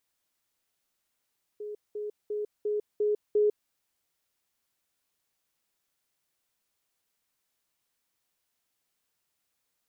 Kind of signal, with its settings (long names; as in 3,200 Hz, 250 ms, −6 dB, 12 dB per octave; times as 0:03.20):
level staircase 419 Hz −35 dBFS, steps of 3 dB, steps 6, 0.15 s 0.20 s